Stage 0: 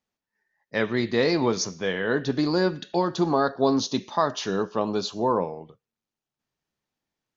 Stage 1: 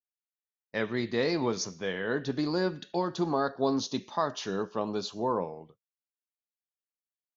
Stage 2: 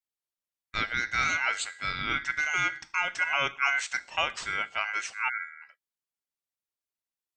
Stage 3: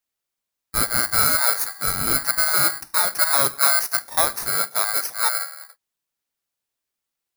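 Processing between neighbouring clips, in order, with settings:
expander -42 dBFS; gain -6 dB
spectral delete 5.29–5.63, 470–5200 Hz; ring modulator 1800 Hz; gain +3.5 dB
FFT order left unsorted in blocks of 16 samples; gain +9 dB

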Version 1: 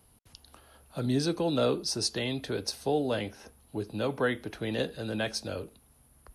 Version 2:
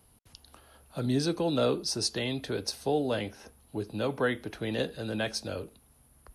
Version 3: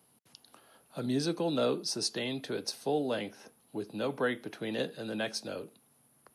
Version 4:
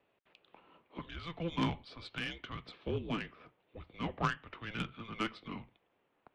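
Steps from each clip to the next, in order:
nothing audible
HPF 140 Hz 24 dB/oct; gain -2.5 dB
mistuned SSB -340 Hz 570–3400 Hz; added harmonics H 3 -15 dB, 4 -19 dB, 5 -34 dB, 6 -20 dB, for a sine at -21 dBFS; gain +5 dB

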